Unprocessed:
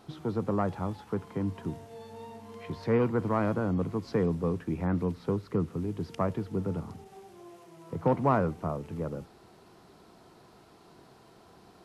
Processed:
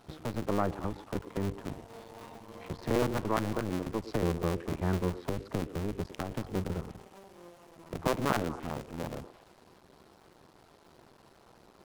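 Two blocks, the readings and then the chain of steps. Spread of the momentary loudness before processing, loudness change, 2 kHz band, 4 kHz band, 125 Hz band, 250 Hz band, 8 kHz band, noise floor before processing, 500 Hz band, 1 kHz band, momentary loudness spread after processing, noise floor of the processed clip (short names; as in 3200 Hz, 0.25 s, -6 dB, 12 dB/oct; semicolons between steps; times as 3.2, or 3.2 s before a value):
18 LU, -3.0 dB, +1.5 dB, +7.5 dB, -3.5 dB, -3.5 dB, n/a, -57 dBFS, -3.5 dB, -2.5 dB, 18 LU, -60 dBFS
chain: cycle switcher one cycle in 2, muted; delay with a stepping band-pass 0.114 s, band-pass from 360 Hz, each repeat 1.4 oct, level -10 dB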